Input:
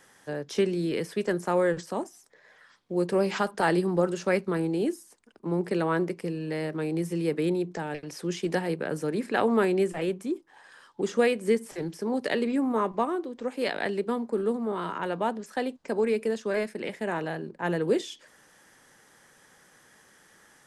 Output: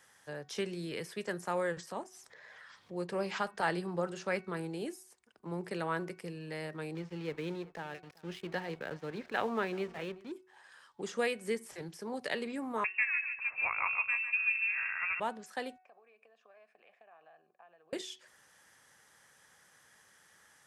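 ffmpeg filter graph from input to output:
-filter_complex "[0:a]asettb=1/sr,asplit=3[a][b][c];[a]atrim=end=1.914[d];[b]atrim=start=1.91:end=4.57,asetpts=PTS-STARTPTS,afade=t=in:d=0.004:c=qsin,afade=t=out:st=2.656:d=0.004:c=qsin,highshelf=f=9k:g=-10.5,acompressor=mode=upward:threshold=-38dB:ratio=2.5:attack=3.2:release=140:knee=2.83:detection=peak[e];[c]atrim=start=4.566[f];[d][e]acrossfade=d=0.004:c1=hsin:c2=qsin[g];[g][f]acrossfade=d=0.004:c1=qsin:c2=hsin,asettb=1/sr,asplit=3[h][i][j];[h]atrim=end=6.954[k];[i]atrim=start=6.95:end=10.32,asetpts=PTS-STARTPTS,afade=t=in:d=0.004:c=qsin,afade=t=out:st=3.366:d=0.004:c=qsin,lowpass=f=4.3k:w=0.5412,lowpass=f=4.3k:w=1.3066,aeval=exprs='sgn(val(0))*max(abs(val(0))-0.00531,0)':c=same,aecho=1:1:383:0.0708,atrim=end_sample=148617[l];[j]atrim=start=10.316[m];[k][l]acrossfade=d=0.004:c1=hsin:c2=qsin[n];[n][m]acrossfade=d=0.004:c1=qsin:c2=hsin,asettb=1/sr,asplit=3[o][p][q];[o]atrim=end=12.844[r];[p]atrim=start=12.84:end=15.2,asetpts=PTS-STARTPTS,afade=t=in:d=0.004:c=qsin,afade=t=out:st=2.356:d=0.004:c=qsin,equalizer=f=1.9k:w=4.7:g=6.5,aecho=1:1:147|294|441|588:0.398|0.147|0.0545|0.0202,atrim=end_sample=104076,lowpass=f=2.5k:t=q:w=0.5098,lowpass=f=2.5k:t=q:w=0.6013,lowpass=f=2.5k:t=q:w=0.9,lowpass=f=2.5k:t=q:w=2.563,afreqshift=-2900[s];[q]atrim=start=15.196[t];[r][s]acrossfade=d=0.004:c1=hsin:c2=qsin[u];[u][t]acrossfade=d=0.004:c1=qsin:c2=hsin,asettb=1/sr,asplit=3[v][w][x];[v]atrim=end=15.784[y];[w]atrim=start=15.78:end=17.93,asetpts=PTS-STARTPTS,afade=t=in:d=0.004:c=qsin,afade=t=out:st=2.146:d=0.004:c=qsin,equalizer=f=1.8k:t=o:w=0.31:g=14,acompressor=threshold=-34dB:ratio=16:attack=3.2:release=140:knee=1:detection=peak,asplit=3[z][aa][ab];[z]bandpass=f=730:t=q:w=8,volume=0dB[ac];[aa]bandpass=f=1.09k:t=q:w=8,volume=-6dB[ad];[ab]bandpass=f=2.44k:t=q:w=8,volume=-9dB[ae];[ac][ad][ae]amix=inputs=3:normalize=0[af];[x]atrim=start=17.926[ag];[y][af]acrossfade=d=0.004:c1=hsin:c2=qsin[ah];[ah][ag]acrossfade=d=0.004:c1=qsin:c2=hsin,highpass=46,equalizer=f=290:w=0.72:g=-9,bandreject=f=371.9:t=h:w=4,bandreject=f=743.8:t=h:w=4,bandreject=f=1.1157k:t=h:w=4,bandreject=f=1.4876k:t=h:w=4,bandreject=f=1.8595k:t=h:w=4,bandreject=f=2.2314k:t=h:w=4,bandreject=f=2.6033k:t=h:w=4,volume=-4.5dB"

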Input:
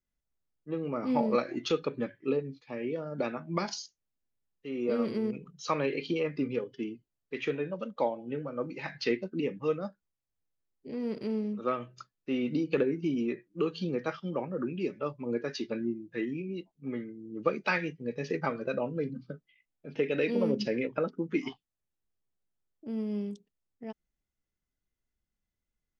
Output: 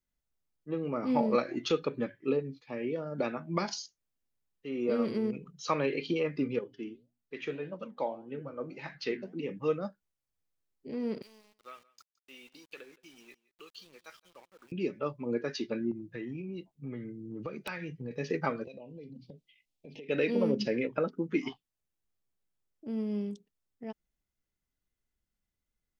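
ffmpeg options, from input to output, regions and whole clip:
-filter_complex "[0:a]asettb=1/sr,asplit=3[a][b][c];[a]atrim=end=6.594[d];[b]atrim=start=6.59:end=9.49,asetpts=PTS-STARTPTS,afade=t=in:d=0.004:c=qsin,afade=t=out:st=2.896:d=0.004:c=qsin,bandreject=f=60:t=h:w=6,bandreject=f=120:t=h:w=6,bandreject=f=180:t=h:w=6,bandreject=f=240:t=h:w=6,bandreject=f=300:t=h:w=6,flanger=delay=3.6:depth=9.8:regen=80:speed=1.7:shape=triangular[e];[c]atrim=start=9.486[f];[d][e]acrossfade=d=0.004:c1=hsin:c2=qsin[g];[g][f]acrossfade=d=0.004:c1=qsin:c2=hsin,asettb=1/sr,asplit=3[h][i][j];[h]atrim=end=11.224[k];[i]atrim=start=11.22:end=14.72,asetpts=PTS-STARTPTS,afade=t=in:d=0.004:c=qsin,afade=t=out:st=3.496:d=0.004:c=qsin,aderivative,aeval=exprs='val(0)*gte(abs(val(0)),0.00126)':c=same,aecho=1:1:169:0.0794,atrim=end_sample=154350[l];[j]atrim=start=14.716[m];[k][l]acrossfade=d=0.004:c1=hsin:c2=qsin[n];[n][m]acrossfade=d=0.004:c1=qsin:c2=hsin,asettb=1/sr,asplit=3[o][p][q];[o]atrim=end=15.914[r];[p]atrim=start=15.91:end=18.11,asetpts=PTS-STARTPTS,afade=t=in:d=0.004:c=qsin,afade=t=out:st=2.196:d=0.004:c=qsin,equalizer=f=120:w=2:g=10,acompressor=threshold=-36dB:ratio=4:attack=3.2:release=140:knee=1:detection=peak,aeval=exprs='(mod(20*val(0)+1,2)-1)/20':c=same[s];[q]atrim=start=18.106[t];[r][s]acrossfade=d=0.004:c1=hsin:c2=qsin[u];[u][t]acrossfade=d=0.004:c1=qsin:c2=hsin,asettb=1/sr,asplit=3[v][w][x];[v]atrim=end=18.644[y];[w]atrim=start=18.64:end=20.09,asetpts=PTS-STARTPTS,afade=t=in:d=0.004:c=qsin,afade=t=out:st=1.446:d=0.004:c=qsin,equalizer=f=3.8k:w=0.67:g=6.5,acompressor=threshold=-44dB:ratio=6:attack=3.2:release=140:knee=1:detection=peak,asuperstop=centerf=1400:order=4:qfactor=0.95[z];[x]atrim=start=20.086[aa];[y][z]acrossfade=d=0.004:c1=hsin:c2=qsin[ab];[ab][aa]acrossfade=d=0.004:c1=qsin:c2=hsin"

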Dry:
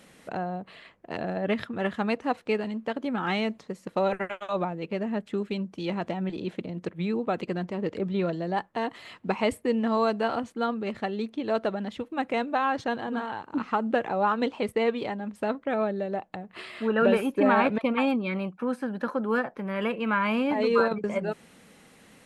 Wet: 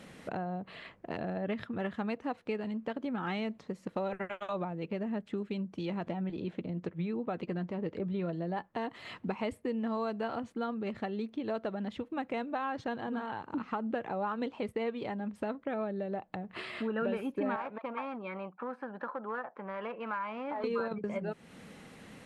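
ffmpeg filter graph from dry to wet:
-filter_complex "[0:a]asettb=1/sr,asplit=3[a][b][c];[a]atrim=end=6.074[d];[b]atrim=start=6.07:end=8.64,asetpts=PTS-STARTPTS,afade=t=in:d=0.004:c=qsin,afade=t=out:st=2.566:d=0.004:c=qsin,highshelf=f=7k:g=-8.5,acompressor=mode=upward:threshold=-39dB:ratio=2.5:attack=3.2:release=140:knee=2.83:detection=peak,asplit=2[e][f];[f]adelay=12,volume=-14dB[g];[e][g]amix=inputs=2:normalize=0,atrim=end_sample=113337[h];[c]atrim=start=8.636[i];[d][h]acrossfade=d=0.004:c1=hsin:c2=qsin[j];[j][i]acrossfade=d=0.004:c1=qsin:c2=hsin,asettb=1/sr,asplit=3[k][l][m];[k]atrim=end=17.564[n];[l]atrim=start=17.56:end=20.64,asetpts=PTS-STARTPTS,afade=t=in:d=0.004:c=qsin,afade=t=out:st=3.076:d=0.004:c=qsin,aeval=exprs='clip(val(0),-1,0.0631)':c=same,bandpass=f=990:t=q:w=1.3[o];[m]atrim=start=20.636[p];[n][o]acrossfade=d=0.004:c1=hsin:c2=qsin[q];[q][p]acrossfade=d=0.004:c1=qsin:c2=hsin,equalizer=f=110:w=0.64:g=4,acompressor=threshold=-40dB:ratio=2.5,highshelf=f=6.3k:g=-9,volume=2.5dB"

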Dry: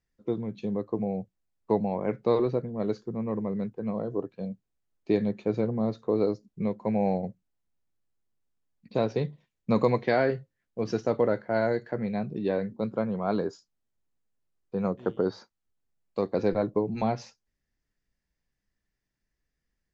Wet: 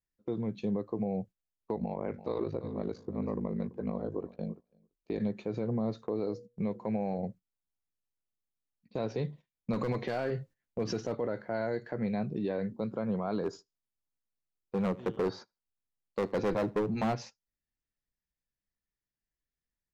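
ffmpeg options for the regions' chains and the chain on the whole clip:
-filter_complex "[0:a]asettb=1/sr,asplit=3[a][b][c];[a]atrim=end=1.754[d];[b]atrim=start=1.75:end=5.2,asetpts=PTS-STARTPTS,afade=t=in:d=0.004:c=qsin,afade=t=out:st=3.446:d=0.004:c=qsin,aeval=exprs='val(0)*sin(2*PI*26*n/s)':c=same,aecho=1:1:335|670:0.119|0.0202,atrim=end_sample=152145[e];[c]atrim=start=5.196[f];[d][e]acrossfade=d=0.004:c1=hsin:c2=qsin[g];[g][f]acrossfade=d=0.004:c1=qsin:c2=hsin,asettb=1/sr,asplit=3[h][i][j];[h]atrim=end=6.024[k];[i]atrim=start=6.02:end=7.19,asetpts=PTS-STARTPTS,afade=t=in:d=0.004:c=qsin,afade=t=out:st=1.166:d=0.004:c=qsin,bandreject=f=120.3:t=h:w=4,bandreject=f=240.6:t=h:w=4,bandreject=f=360.9:t=h:w=4,bandreject=f=481.2:t=h:w=4,acompressor=threshold=-29dB:ratio=2:attack=3.2:release=140:knee=1:detection=peak[l];[j]atrim=start=7.186[m];[k][l]acrossfade=d=0.004:c1=hsin:c2=qsin[n];[n][m]acrossfade=d=0.004:c1=qsin:c2=hsin,asettb=1/sr,asplit=3[o][p][q];[o]atrim=end=9.734[r];[p]atrim=start=9.73:end=11.15,asetpts=PTS-STARTPTS,afade=t=in:d=0.004:c=qsin,afade=t=out:st=1.416:d=0.004:c=qsin,acontrast=29,aeval=exprs='clip(val(0),-1,0.141)':c=same[s];[q]atrim=start=11.146[t];[r][s]acrossfade=d=0.004:c1=hsin:c2=qsin[u];[u][t]acrossfade=d=0.004:c1=qsin:c2=hsin,asettb=1/sr,asplit=3[v][w][x];[v]atrim=end=13.434[y];[w]atrim=start=13.43:end=17.15,asetpts=PTS-STARTPTS,afade=t=in:d=0.004:c=qsin,afade=t=out:st=3.716:d=0.004:c=qsin,volume=25dB,asoftclip=hard,volume=-25dB,aecho=1:1:77|154:0.0708|0.017,atrim=end_sample=164052[z];[x]atrim=start=17.146[aa];[y][z]acrossfade=d=0.004:c1=hsin:c2=qsin[ab];[ab][aa]acrossfade=d=0.004:c1=qsin:c2=hsin,agate=range=-12dB:threshold=-45dB:ratio=16:detection=peak,alimiter=limit=-23.5dB:level=0:latency=1:release=86"

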